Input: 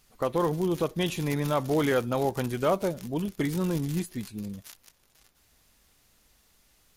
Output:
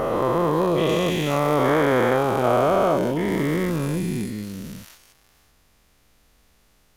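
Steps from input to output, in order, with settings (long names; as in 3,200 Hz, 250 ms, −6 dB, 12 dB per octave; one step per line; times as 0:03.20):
every bin's largest magnitude spread in time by 480 ms
high-shelf EQ 3,000 Hz −7.5 dB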